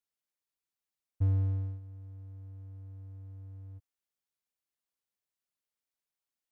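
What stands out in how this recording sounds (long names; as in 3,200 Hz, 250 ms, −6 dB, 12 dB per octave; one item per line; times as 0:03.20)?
background noise floor −92 dBFS
spectral slope −13.5 dB per octave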